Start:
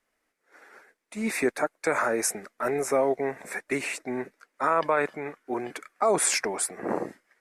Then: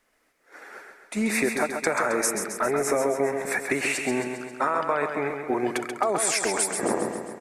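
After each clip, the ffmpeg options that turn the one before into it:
ffmpeg -i in.wav -filter_complex "[0:a]acompressor=threshold=-30dB:ratio=6,asplit=2[link_01][link_02];[link_02]aecho=0:1:134|268|402|536|670|804|938|1072:0.473|0.274|0.159|0.0923|0.0535|0.0311|0.018|0.0104[link_03];[link_01][link_03]amix=inputs=2:normalize=0,volume=8dB" out.wav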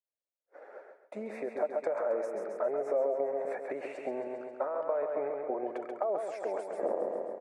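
ffmpeg -i in.wav -af "agate=range=-33dB:threshold=-46dB:ratio=3:detection=peak,acompressor=threshold=-26dB:ratio=6,bandpass=frequency=570:width_type=q:width=4.3:csg=0,volume=5.5dB" out.wav

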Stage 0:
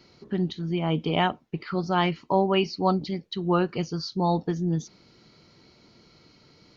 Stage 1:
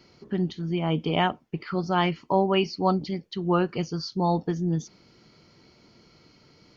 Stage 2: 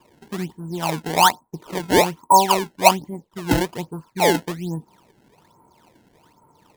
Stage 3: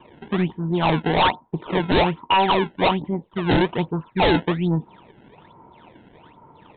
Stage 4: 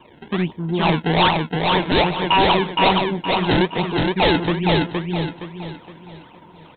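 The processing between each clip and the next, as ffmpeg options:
ffmpeg -i in.wav -af "bandreject=frequency=3900:width=9.4" out.wav
ffmpeg -i in.wav -af "lowpass=frequency=950:width_type=q:width=10,acrusher=samples=21:mix=1:aa=0.000001:lfo=1:lforange=33.6:lforate=1.2,volume=-2.5dB" out.wav
ffmpeg -i in.wav -af "alimiter=limit=-10dB:level=0:latency=1:release=197,aresample=8000,aeval=exprs='0.376*sin(PI/2*2.51*val(0)/0.376)':channel_layout=same,aresample=44100,volume=-4.5dB" out.wav
ffmpeg -i in.wav -filter_complex "[0:a]highshelf=frequency=3300:gain=8,asplit=2[link_01][link_02];[link_02]aecho=0:1:467|934|1401|1868|2335:0.708|0.262|0.0969|0.0359|0.0133[link_03];[link_01][link_03]amix=inputs=2:normalize=0" out.wav

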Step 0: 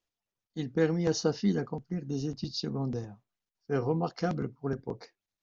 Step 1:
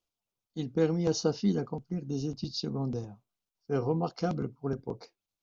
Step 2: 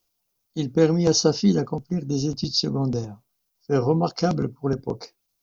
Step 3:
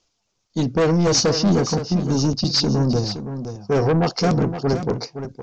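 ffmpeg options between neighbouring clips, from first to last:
ffmpeg -i in.wav -af "equalizer=frequency=1800:width=4.4:gain=-12.5" out.wav
ffmpeg -i in.wav -af "aexciter=amount=2:drive=4.1:freq=4600,volume=8.5dB" out.wav
ffmpeg -i in.wav -af "aresample=16000,asoftclip=type=tanh:threshold=-22.5dB,aresample=44100,aecho=1:1:517:0.316,volume=8.5dB" out.wav

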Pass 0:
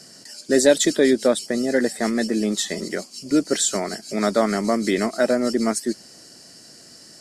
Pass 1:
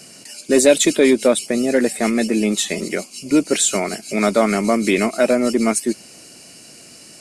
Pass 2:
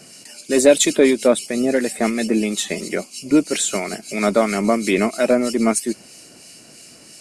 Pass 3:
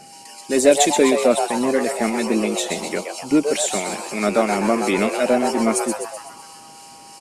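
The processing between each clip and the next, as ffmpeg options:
ffmpeg -i in.wav -af "superequalizer=11b=0.708:12b=2.82:14b=0.631:16b=1.58,acontrast=28,volume=-1dB" out.wav
ffmpeg -i in.wav -filter_complex "[0:a]acrossover=split=2000[link_01][link_02];[link_01]aeval=exprs='val(0)*(1-0.5/2+0.5/2*cos(2*PI*3*n/s))':channel_layout=same[link_03];[link_02]aeval=exprs='val(0)*(1-0.5/2-0.5/2*cos(2*PI*3*n/s))':channel_layout=same[link_04];[link_03][link_04]amix=inputs=2:normalize=0,volume=1dB" out.wav
ffmpeg -i in.wav -filter_complex "[0:a]aeval=exprs='val(0)+0.00794*sin(2*PI*800*n/s)':channel_layout=same,asplit=2[link_01][link_02];[link_02]asplit=7[link_03][link_04][link_05][link_06][link_07][link_08][link_09];[link_03]adelay=126,afreqshift=150,volume=-6.5dB[link_10];[link_04]adelay=252,afreqshift=300,volume=-11.9dB[link_11];[link_05]adelay=378,afreqshift=450,volume=-17.2dB[link_12];[link_06]adelay=504,afreqshift=600,volume=-22.6dB[link_13];[link_07]adelay=630,afreqshift=750,volume=-27.9dB[link_14];[link_08]adelay=756,afreqshift=900,volume=-33.3dB[link_15];[link_09]adelay=882,afreqshift=1050,volume=-38.6dB[link_16];[link_10][link_11][link_12][link_13][link_14][link_15][link_16]amix=inputs=7:normalize=0[link_17];[link_01][link_17]amix=inputs=2:normalize=0,volume=-2dB" out.wav

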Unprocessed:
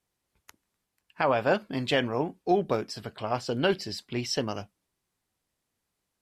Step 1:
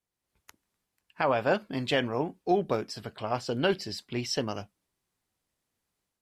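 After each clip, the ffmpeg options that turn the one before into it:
ffmpeg -i in.wav -af "dynaudnorm=framelen=100:gausssize=5:maxgain=7dB,volume=-8dB" out.wav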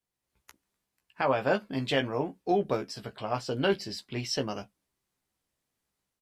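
ffmpeg -i in.wav -filter_complex "[0:a]asplit=2[link_01][link_02];[link_02]adelay=15,volume=-7dB[link_03];[link_01][link_03]amix=inputs=2:normalize=0,volume=-1.5dB" out.wav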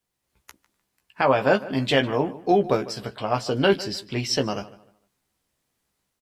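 ffmpeg -i in.wav -filter_complex "[0:a]asplit=2[link_01][link_02];[link_02]adelay=151,lowpass=frequency=3500:poles=1,volume=-17.5dB,asplit=2[link_03][link_04];[link_04]adelay=151,lowpass=frequency=3500:poles=1,volume=0.3,asplit=2[link_05][link_06];[link_06]adelay=151,lowpass=frequency=3500:poles=1,volume=0.3[link_07];[link_01][link_03][link_05][link_07]amix=inputs=4:normalize=0,volume=7dB" out.wav

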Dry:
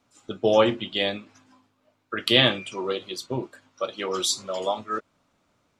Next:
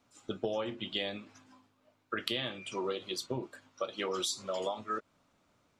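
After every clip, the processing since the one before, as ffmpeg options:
ffmpeg -i in.wav -af "acompressor=threshold=-28dB:ratio=16,volume=-2.5dB" out.wav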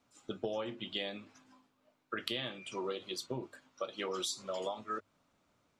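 ffmpeg -i in.wav -af "bandreject=frequency=50:width_type=h:width=6,bandreject=frequency=100:width_type=h:width=6,volume=-3dB" out.wav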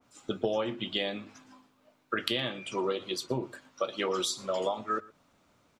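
ffmpeg -i in.wav -af "aecho=1:1:117:0.0794,adynamicequalizer=threshold=0.00282:dfrequency=2300:dqfactor=0.7:tfrequency=2300:tqfactor=0.7:attack=5:release=100:ratio=0.375:range=2:mode=cutabove:tftype=highshelf,volume=7.5dB" out.wav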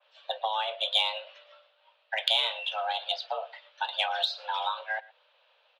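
ffmpeg -i in.wav -af "highpass=frequency=160:width_type=q:width=0.5412,highpass=frequency=160:width_type=q:width=1.307,lowpass=frequency=3200:width_type=q:width=0.5176,lowpass=frequency=3200:width_type=q:width=0.7071,lowpass=frequency=3200:width_type=q:width=1.932,afreqshift=330,aexciter=amount=2.8:drive=9:freq=2600,volume=-1dB" out.wav

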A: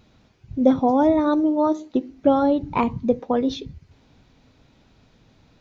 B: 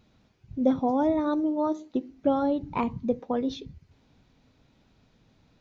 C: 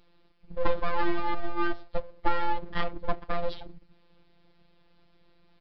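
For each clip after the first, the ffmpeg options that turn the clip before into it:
ffmpeg -i in.wav -af "equalizer=frequency=190:width_type=o:width=0.77:gain=2,volume=-7dB" out.wav
ffmpeg -i in.wav -af "aeval=exprs='abs(val(0))':channel_layout=same,afftfilt=real='hypot(re,im)*cos(PI*b)':imag='0':win_size=1024:overlap=0.75,aresample=11025,aresample=44100,volume=4.5dB" out.wav

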